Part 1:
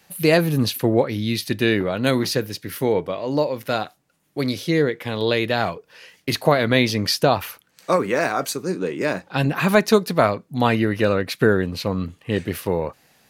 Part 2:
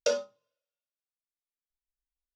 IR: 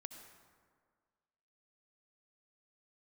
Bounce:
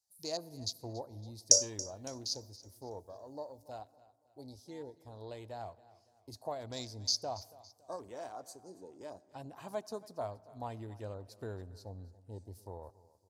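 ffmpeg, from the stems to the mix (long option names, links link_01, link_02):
-filter_complex "[0:a]afwtdn=0.0447,equalizer=frequency=500:width_type=o:width=1:gain=-6,equalizer=frequency=1000:width_type=o:width=1:gain=8,equalizer=frequency=2000:width_type=o:width=1:gain=-4,equalizer=frequency=4000:width_type=o:width=1:gain=8,equalizer=frequency=8000:width_type=o:width=1:gain=8,volume=-17.5dB,asplit=3[link_01][link_02][link_03];[link_02]volume=-10.5dB[link_04];[link_03]volume=-18.5dB[link_05];[1:a]highshelf=frequency=4400:width_type=q:width=3:gain=14,adelay=1450,volume=-5dB,asplit=2[link_06][link_07];[link_07]volume=-18.5dB[link_08];[2:a]atrim=start_sample=2205[link_09];[link_04][link_09]afir=irnorm=-1:irlink=0[link_10];[link_05][link_08]amix=inputs=2:normalize=0,aecho=0:1:280|560|840|1120|1400|1680:1|0.4|0.16|0.064|0.0256|0.0102[link_11];[link_01][link_06][link_10][link_11]amix=inputs=4:normalize=0,firequalizer=gain_entry='entry(100,0);entry(150,-18);entry(250,-10);entry(650,-2);entry(1200,-19);entry(1900,-17);entry(2900,-19);entry(5000,2)':delay=0.05:min_phase=1"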